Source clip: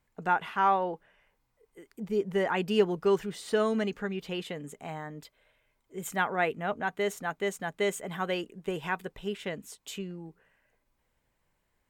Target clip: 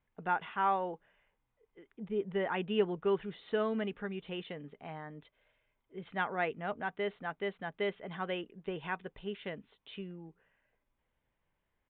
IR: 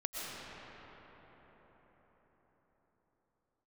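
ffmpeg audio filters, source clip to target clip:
-af "aresample=8000,aresample=44100,volume=-5.5dB"

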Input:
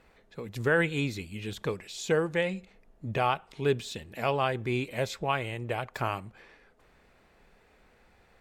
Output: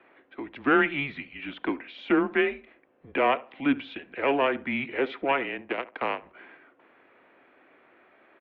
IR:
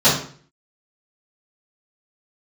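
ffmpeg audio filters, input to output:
-filter_complex "[0:a]asettb=1/sr,asplit=3[link_01][link_02][link_03];[link_01]atrim=end=5.614[link_04];[link_02]atrim=start=5.61:end=6.22,asetpts=PTS-STARTPTS,afade=type=in:duration=0.004:curve=qsin,afade=type=out:start_time=0.606:duration=0.004:curve=qsin,aeval=exprs='0.188*(cos(1*acos(clip(val(0)/0.188,-1,1)))-cos(1*PI/2))+0.00596*(cos(3*acos(clip(val(0)/0.188,-1,1)))-cos(3*PI/2))+0.0168*(cos(7*acos(clip(val(0)/0.188,-1,1)))-cos(7*PI/2))':channel_layout=same[link_05];[link_03]atrim=start=6.216[link_06];[link_04][link_05]acrossfade=duration=0.004:curve1=hsin:curve2=qsin[link_07];[link_07][link_06]acrossfade=duration=0.004:curve1=qsin:curve2=hsin,acrossover=split=370|480|1800[link_08][link_09][link_10][link_11];[link_10]aeval=exprs='clip(val(0),-1,0.0224)':channel_layout=same[link_12];[link_08][link_09][link_12][link_11]amix=inputs=4:normalize=0,asplit=2[link_13][link_14];[link_14]adelay=70,lowpass=frequency=1400:poles=1,volume=-17dB,asplit=2[link_15][link_16];[link_16]adelay=70,lowpass=frequency=1400:poles=1,volume=0.29,asplit=2[link_17][link_18];[link_18]adelay=70,lowpass=frequency=1400:poles=1,volume=0.29[link_19];[link_13][link_15][link_17][link_19]amix=inputs=4:normalize=0,highpass=frequency=420:width_type=q:width=0.5412,highpass=frequency=420:width_type=q:width=1.307,lowpass=frequency=3100:width_type=q:width=0.5176,lowpass=frequency=3100:width_type=q:width=0.7071,lowpass=frequency=3100:width_type=q:width=1.932,afreqshift=-140,volume=6dB"

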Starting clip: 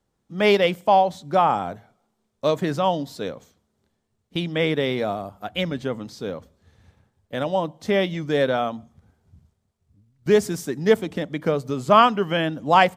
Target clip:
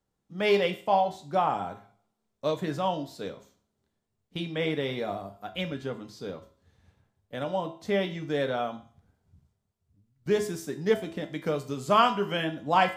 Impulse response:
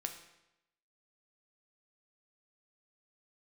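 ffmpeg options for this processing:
-filter_complex "[0:a]asettb=1/sr,asplit=3[link_01][link_02][link_03];[link_01]atrim=end=11.234[link_04];[link_02]atrim=start=11.23:end=12.44,asetpts=PTS-STARTPTS,afade=type=in:duration=0.004:curve=qsin,afade=type=out:start_time=1.206:duration=0.004:curve=qsin,highshelf=frequency=3600:gain=7[link_05];[link_03]atrim=start=12.436[link_06];[link_04][link_05]acrossfade=duration=0.004:curve1=hsin:curve2=qsin[link_07];[link_07][link_06]acrossfade=duration=0.004:curve1=qsin:curve2=hsin[link_08];[1:a]atrim=start_sample=2205,asetrate=88200,aresample=44100[link_09];[link_08][link_09]afir=irnorm=-1:irlink=0"

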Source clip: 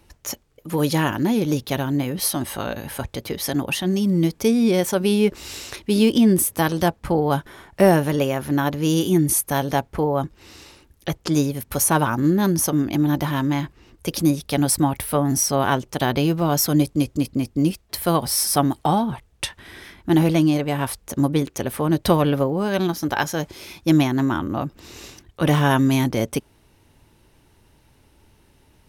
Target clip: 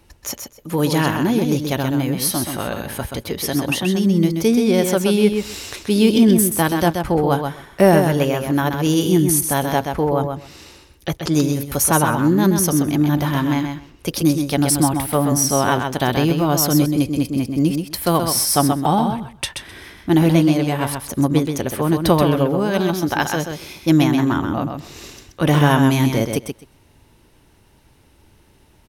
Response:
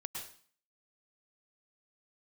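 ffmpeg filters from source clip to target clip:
-af "aecho=1:1:129|258|387:0.501|0.0752|0.0113,volume=2dB"

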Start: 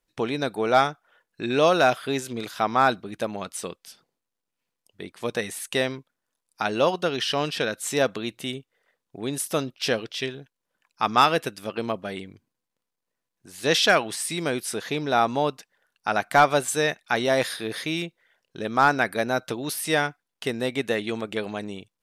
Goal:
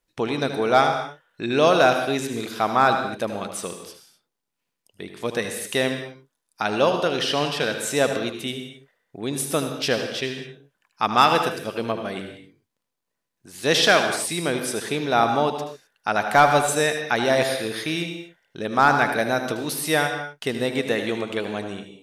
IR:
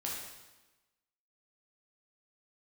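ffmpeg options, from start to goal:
-filter_complex "[0:a]asplit=2[link_01][link_02];[1:a]atrim=start_sample=2205,afade=type=out:start_time=0.24:duration=0.01,atrim=end_sample=11025,adelay=77[link_03];[link_02][link_03]afir=irnorm=-1:irlink=0,volume=-7.5dB[link_04];[link_01][link_04]amix=inputs=2:normalize=0,volume=1.5dB"

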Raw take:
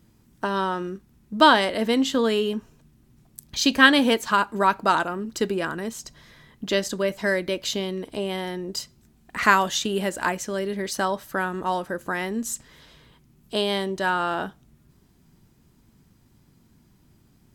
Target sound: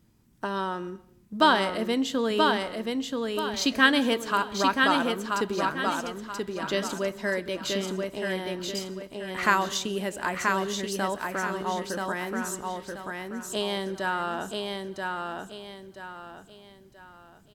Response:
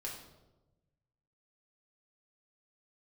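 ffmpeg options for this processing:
-filter_complex "[0:a]aecho=1:1:981|1962|2943|3924|4905:0.668|0.234|0.0819|0.0287|0.01,asplit=2[link_01][link_02];[1:a]atrim=start_sample=2205,afade=type=out:start_time=0.33:duration=0.01,atrim=end_sample=14994,adelay=131[link_03];[link_02][link_03]afir=irnorm=-1:irlink=0,volume=-19.5dB[link_04];[link_01][link_04]amix=inputs=2:normalize=0,volume=-5dB"

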